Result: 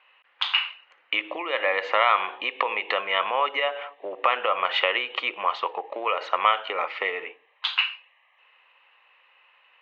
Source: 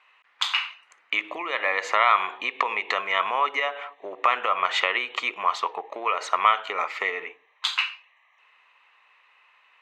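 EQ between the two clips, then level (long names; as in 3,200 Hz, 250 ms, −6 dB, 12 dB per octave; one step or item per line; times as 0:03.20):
loudspeaker in its box 170–4,300 Hz, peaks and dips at 190 Hz +4 dB, 320 Hz +5 dB, 530 Hz +10 dB, 810 Hz +4 dB, 1,600 Hz +3 dB, 2,900 Hz +7 dB
−3.0 dB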